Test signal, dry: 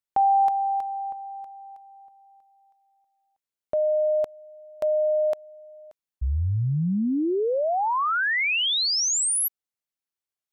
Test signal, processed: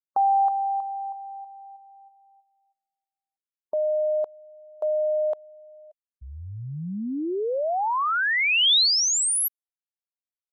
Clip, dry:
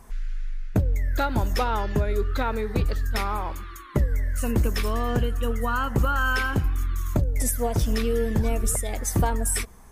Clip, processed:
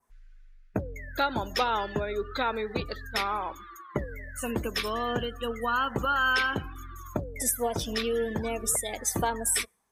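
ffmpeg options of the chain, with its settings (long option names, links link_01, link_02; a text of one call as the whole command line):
ffmpeg -i in.wav -af "adynamicequalizer=threshold=0.00447:dfrequency=3600:dqfactor=1.6:tfrequency=3600:tqfactor=1.6:attack=5:release=100:ratio=0.375:range=3:mode=boostabove:tftype=bell,highpass=frequency=390:poles=1,afftdn=noise_reduction=21:noise_floor=-41" out.wav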